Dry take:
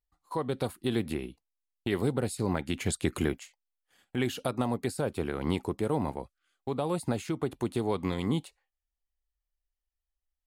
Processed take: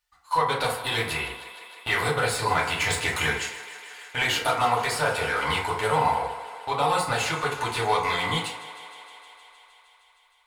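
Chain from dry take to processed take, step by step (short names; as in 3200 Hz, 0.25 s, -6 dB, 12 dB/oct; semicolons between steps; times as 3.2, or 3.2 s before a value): passive tone stack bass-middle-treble 10-0-10; overdrive pedal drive 22 dB, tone 2000 Hz, clips at -20.5 dBFS; on a send: thinning echo 0.155 s, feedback 80%, high-pass 260 Hz, level -15.5 dB; on the sum: FDN reverb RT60 0.66 s, low-frequency decay 0.85×, high-frequency decay 0.45×, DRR -4.5 dB; gain +6.5 dB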